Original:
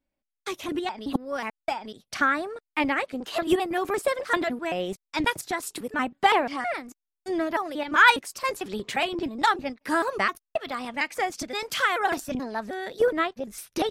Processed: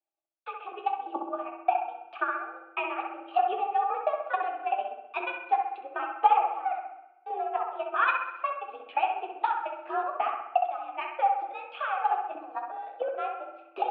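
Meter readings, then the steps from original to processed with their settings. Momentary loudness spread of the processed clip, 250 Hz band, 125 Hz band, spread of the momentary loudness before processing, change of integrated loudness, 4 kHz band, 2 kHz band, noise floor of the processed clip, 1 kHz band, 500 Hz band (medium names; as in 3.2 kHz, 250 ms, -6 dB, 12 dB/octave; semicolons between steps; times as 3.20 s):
11 LU, -16.5 dB, under -40 dB, 10 LU, -4.0 dB, -15.5 dB, -10.0 dB, -56 dBFS, +0.5 dB, -6.0 dB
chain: in parallel at -1 dB: level held to a coarse grid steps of 14 dB; on the sum: transient shaper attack +8 dB, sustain -9 dB; flange 0.47 Hz, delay 9.5 ms, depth 9 ms, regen -51%; vowel filter a; on a send: bucket-brigade echo 65 ms, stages 1024, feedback 56%, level -4 dB; on the sum: FDN reverb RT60 1.1 s, low-frequency decay 1.3×, high-frequency decay 0.95×, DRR 11 dB; mistuned SSB +57 Hz 180–3300 Hz; trim +1.5 dB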